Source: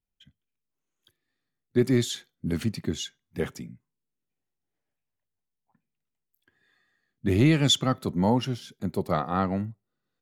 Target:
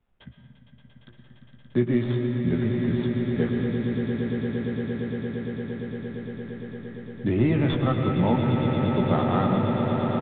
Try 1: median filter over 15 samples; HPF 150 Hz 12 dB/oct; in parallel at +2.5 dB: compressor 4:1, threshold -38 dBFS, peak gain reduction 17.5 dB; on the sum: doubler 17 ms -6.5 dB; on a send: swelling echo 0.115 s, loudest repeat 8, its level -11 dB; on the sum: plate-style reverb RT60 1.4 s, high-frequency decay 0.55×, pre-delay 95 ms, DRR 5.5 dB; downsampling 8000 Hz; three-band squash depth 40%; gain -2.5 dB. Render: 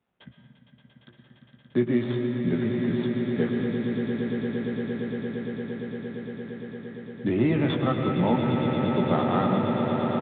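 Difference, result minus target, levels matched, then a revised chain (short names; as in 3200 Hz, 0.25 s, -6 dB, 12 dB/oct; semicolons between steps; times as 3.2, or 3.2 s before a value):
125 Hz band -3.0 dB
median filter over 15 samples; in parallel at +2.5 dB: compressor 4:1, threshold -38 dBFS, peak gain reduction 18 dB; on the sum: doubler 17 ms -6.5 dB; on a send: swelling echo 0.115 s, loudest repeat 8, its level -11 dB; on the sum: plate-style reverb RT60 1.4 s, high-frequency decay 0.55×, pre-delay 95 ms, DRR 5.5 dB; downsampling 8000 Hz; three-band squash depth 40%; gain -2.5 dB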